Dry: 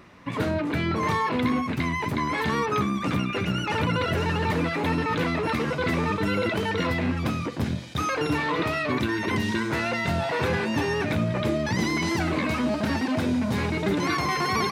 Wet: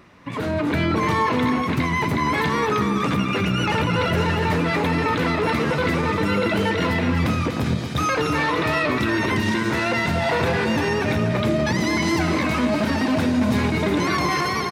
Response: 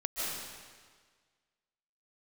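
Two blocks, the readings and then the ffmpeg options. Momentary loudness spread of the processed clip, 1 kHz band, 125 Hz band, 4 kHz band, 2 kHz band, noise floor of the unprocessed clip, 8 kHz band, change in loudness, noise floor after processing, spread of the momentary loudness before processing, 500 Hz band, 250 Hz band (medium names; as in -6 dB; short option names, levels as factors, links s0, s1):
2 LU, +4.5 dB, +4.5 dB, +4.5 dB, +4.5 dB, -31 dBFS, +4.5 dB, +4.5 dB, -25 dBFS, 2 LU, +4.5 dB, +4.5 dB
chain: -filter_complex "[0:a]alimiter=limit=0.1:level=0:latency=1,dynaudnorm=f=190:g=5:m=2.11,aecho=1:1:242:0.355,asplit=2[s0][s1];[1:a]atrim=start_sample=2205,adelay=81[s2];[s1][s2]afir=irnorm=-1:irlink=0,volume=0.133[s3];[s0][s3]amix=inputs=2:normalize=0"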